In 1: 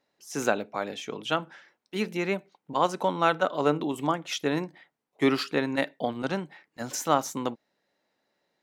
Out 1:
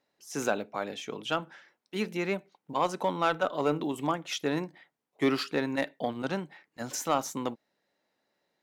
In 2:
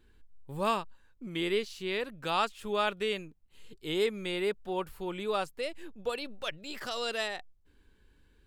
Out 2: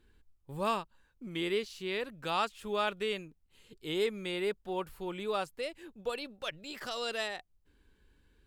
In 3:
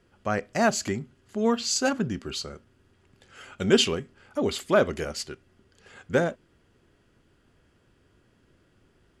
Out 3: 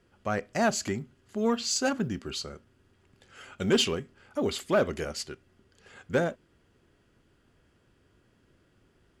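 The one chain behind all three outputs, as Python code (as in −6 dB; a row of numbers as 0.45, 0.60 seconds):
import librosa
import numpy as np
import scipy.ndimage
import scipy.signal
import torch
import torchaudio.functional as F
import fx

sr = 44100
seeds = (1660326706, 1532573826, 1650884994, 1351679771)

y = fx.cheby_harmonics(x, sr, harmonics=(5,), levels_db=(-20,), full_scale_db=-6.0)
y = fx.quant_float(y, sr, bits=6)
y = F.gain(torch.from_numpy(y), -5.5).numpy()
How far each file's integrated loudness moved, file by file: −3.0, −2.0, −3.0 LU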